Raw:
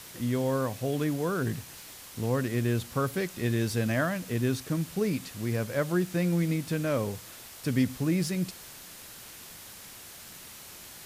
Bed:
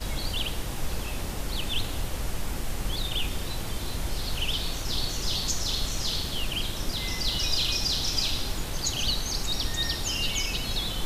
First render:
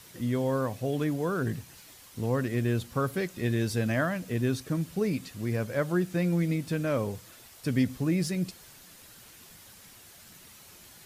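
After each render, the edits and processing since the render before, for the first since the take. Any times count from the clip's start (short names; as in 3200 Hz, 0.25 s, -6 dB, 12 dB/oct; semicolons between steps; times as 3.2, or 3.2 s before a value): denoiser 7 dB, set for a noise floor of -47 dBFS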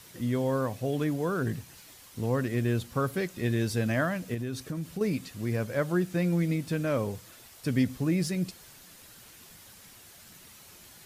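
4.34–5.01 compressor 5:1, threshold -30 dBFS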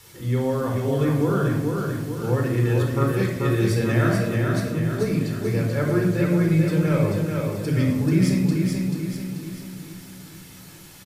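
on a send: feedback echo 0.437 s, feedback 50%, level -4 dB; on the sum: shoebox room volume 2300 m³, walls furnished, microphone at 4.2 m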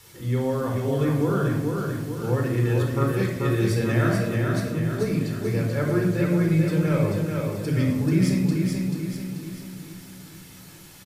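gain -1.5 dB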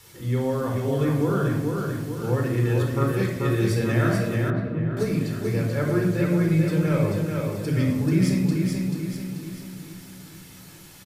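4.5–4.97 air absorption 500 m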